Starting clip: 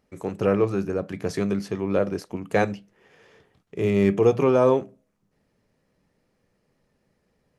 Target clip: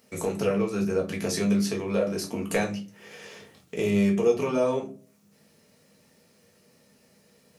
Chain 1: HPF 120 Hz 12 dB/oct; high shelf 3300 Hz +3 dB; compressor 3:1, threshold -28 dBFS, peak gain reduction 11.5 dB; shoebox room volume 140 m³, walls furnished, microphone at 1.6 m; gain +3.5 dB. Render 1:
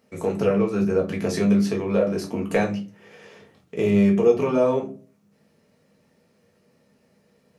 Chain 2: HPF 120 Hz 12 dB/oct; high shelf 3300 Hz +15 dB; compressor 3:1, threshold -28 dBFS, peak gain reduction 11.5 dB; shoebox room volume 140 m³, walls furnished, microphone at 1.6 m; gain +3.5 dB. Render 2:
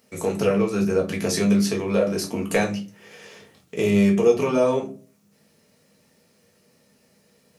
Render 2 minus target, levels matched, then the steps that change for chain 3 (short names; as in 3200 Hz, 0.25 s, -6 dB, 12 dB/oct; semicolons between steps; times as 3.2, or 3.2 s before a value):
compressor: peak gain reduction -4.5 dB
change: compressor 3:1, threshold -35 dBFS, peak gain reduction 16 dB